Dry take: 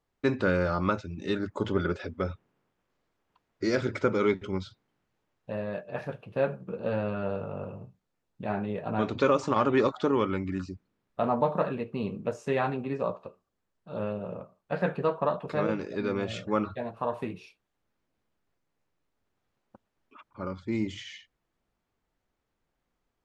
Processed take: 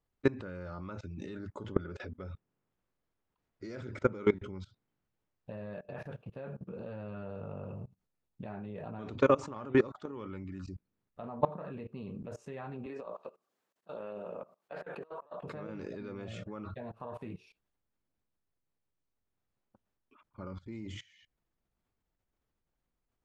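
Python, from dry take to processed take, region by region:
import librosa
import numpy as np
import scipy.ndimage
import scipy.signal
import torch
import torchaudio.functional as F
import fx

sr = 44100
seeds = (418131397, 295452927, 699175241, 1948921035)

y = fx.chain(x, sr, fx.highpass(hz=380.0, slope=12),
    fx.over_compress(threshold_db=-38.0, ratio=-1.0), at=(12.86, 15.41))
y = fx.low_shelf(y, sr, hz=170.0, db=7.0)
y = fx.level_steps(y, sr, step_db=21)
y = fx.dynamic_eq(y, sr, hz=4400.0, q=1.1, threshold_db=-59.0, ratio=4.0, max_db=-6)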